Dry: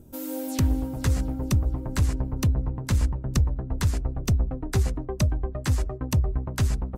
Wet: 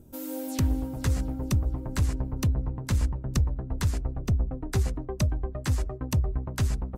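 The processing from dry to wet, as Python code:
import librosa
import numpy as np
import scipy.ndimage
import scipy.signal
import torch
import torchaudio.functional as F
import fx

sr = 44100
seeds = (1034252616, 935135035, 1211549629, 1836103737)

y = fx.high_shelf(x, sr, hz=2500.0, db=-9.0, at=(4.22, 4.62))
y = y * librosa.db_to_amplitude(-2.5)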